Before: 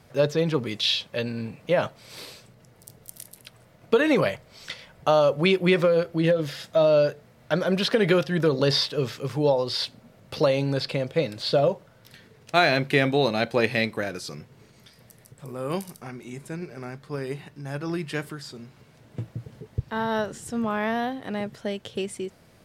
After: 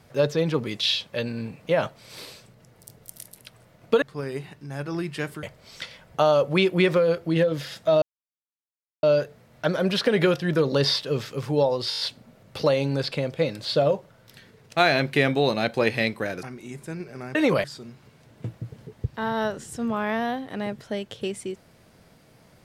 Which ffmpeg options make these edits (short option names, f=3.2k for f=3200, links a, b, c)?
-filter_complex "[0:a]asplit=12[a][b][c][d][e][f][g][h][i][j][k][l];[a]atrim=end=4.022[m];[b]atrim=start=16.968:end=18.382[n];[c]atrim=start=4.308:end=6.9,asetpts=PTS-STARTPTS,afade=t=out:st=2.588:d=0.004:c=hsin,apad=pad_dur=1.01[o];[d]atrim=start=6.9:end=9.792,asetpts=PTS-STARTPTS,afade=t=in:d=0.004:c=hsin[p];[e]atrim=start=9.768:end=9.792[q];[f]atrim=start=9.768:end=9.792[r];[g]atrim=start=9.768:end=9.792[s];[h]atrim=start=9.768:end=9.792[t];[i]atrim=start=9.768:end=14.202[u];[j]atrim=start=16.048:end=16.972[v];[k]atrim=start=4.018:end=4.312[w];[l]atrim=start=18.378[x];[m][n]acrossfade=d=0.004:c1=hsin:c2=hsin[y];[o][p]concat=n=2:v=0:a=1[z];[y][z]acrossfade=d=0.004:c1=hsin:c2=hsin[aa];[aa][q]acrossfade=d=0.004:c1=hsin:c2=hsin[ab];[ab][r]acrossfade=d=0.004:c1=hsin:c2=hsin[ac];[ac][s]acrossfade=d=0.004:c1=hsin:c2=hsin[ad];[ad][t]acrossfade=d=0.004:c1=hsin:c2=hsin[ae];[ae][u]acrossfade=d=0.004:c1=hsin:c2=hsin[af];[af][v]acrossfade=d=0.004:c1=hsin:c2=hsin[ag];[ag][w]acrossfade=d=0.004:c1=hsin:c2=hsin[ah];[ah][x]acrossfade=d=0.004:c1=hsin:c2=hsin"